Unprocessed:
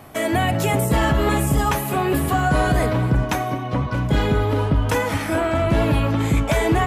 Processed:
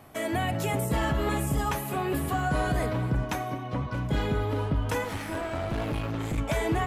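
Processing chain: 5.04–6.38 s: one-sided clip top -26.5 dBFS; trim -8.5 dB

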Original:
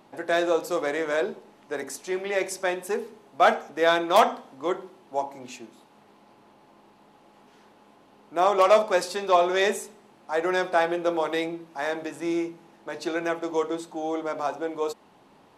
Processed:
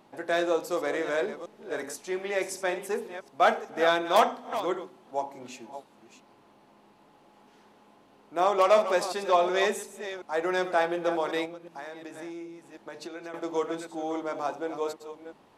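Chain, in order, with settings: chunks repeated in reverse 365 ms, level -11 dB; 11.45–13.34 s: compression 6:1, threshold -35 dBFS, peak gain reduction 12.5 dB; trim -3 dB

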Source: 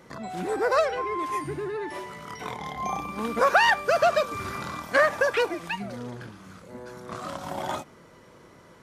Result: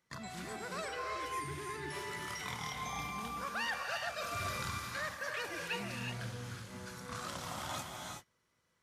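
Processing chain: reverse; compression 6:1, threshold -33 dBFS, peak gain reduction 17.5 dB; reverse; dynamic bell 100 Hz, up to +6 dB, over -57 dBFS, Q 0.97; gated-style reverb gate 400 ms rising, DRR 1.5 dB; gate -42 dBFS, range -22 dB; amplifier tone stack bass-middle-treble 5-5-5; trim +8.5 dB

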